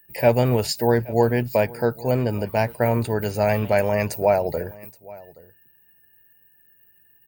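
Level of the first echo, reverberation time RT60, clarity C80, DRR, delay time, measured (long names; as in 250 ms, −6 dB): −21.5 dB, no reverb audible, no reverb audible, no reverb audible, 824 ms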